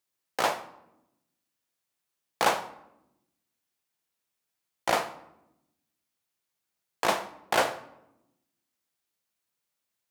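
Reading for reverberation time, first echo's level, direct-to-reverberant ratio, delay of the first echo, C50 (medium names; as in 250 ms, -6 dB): 0.90 s, no echo, 9.0 dB, no echo, 14.0 dB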